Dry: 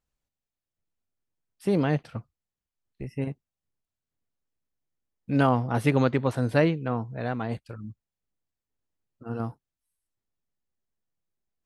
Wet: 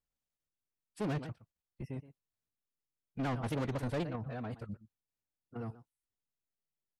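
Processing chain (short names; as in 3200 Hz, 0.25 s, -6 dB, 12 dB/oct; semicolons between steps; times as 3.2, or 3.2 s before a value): level quantiser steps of 13 dB; echo 0.199 s -18 dB; soft clip -32 dBFS, distortion -6 dB; time stretch by phase-locked vocoder 0.6×; shaped vibrato saw down 4 Hz, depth 100 cents; gain +1 dB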